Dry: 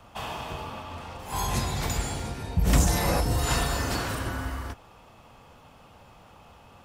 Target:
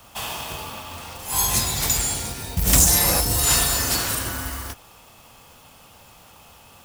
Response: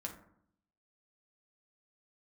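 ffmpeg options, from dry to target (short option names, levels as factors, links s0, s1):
-af "acrusher=bits=6:mode=log:mix=0:aa=0.000001,crystalizer=i=4.5:c=0"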